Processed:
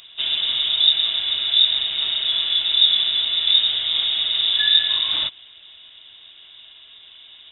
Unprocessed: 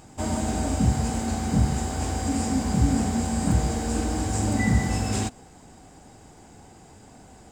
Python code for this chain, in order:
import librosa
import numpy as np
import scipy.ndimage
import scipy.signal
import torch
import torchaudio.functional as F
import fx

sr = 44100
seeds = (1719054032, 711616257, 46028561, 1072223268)

y = fx.freq_invert(x, sr, carrier_hz=3700)
y = y * librosa.db_to_amplitude(3.5)